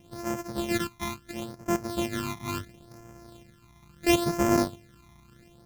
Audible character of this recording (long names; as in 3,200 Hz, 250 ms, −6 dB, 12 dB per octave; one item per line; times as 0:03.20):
a buzz of ramps at a fixed pitch in blocks of 128 samples
phaser sweep stages 12, 0.73 Hz, lowest notch 490–3,800 Hz